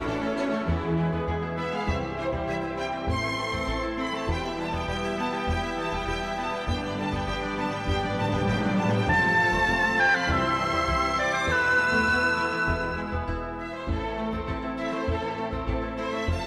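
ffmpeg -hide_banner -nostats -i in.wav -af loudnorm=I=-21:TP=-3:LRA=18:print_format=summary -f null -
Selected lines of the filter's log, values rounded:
Input Integrated:    -26.8 LUFS
Input True Peak:     -11.5 dBTP
Input LRA:             6.8 LU
Input Threshold:     -36.8 LUFS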